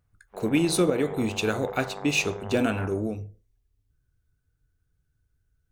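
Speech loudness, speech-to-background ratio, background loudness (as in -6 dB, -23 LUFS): -26.0 LUFS, 14.5 dB, -40.5 LUFS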